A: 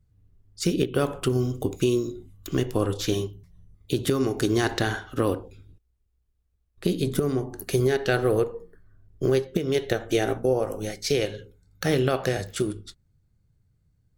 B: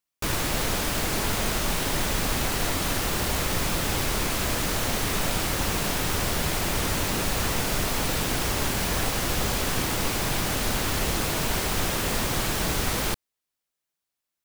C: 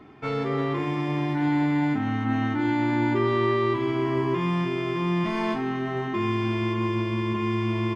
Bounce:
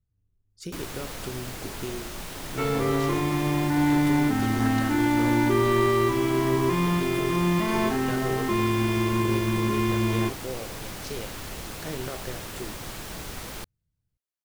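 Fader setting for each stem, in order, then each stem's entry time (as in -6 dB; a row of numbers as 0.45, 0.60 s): -13.0, -11.0, +1.5 dB; 0.00, 0.50, 2.35 s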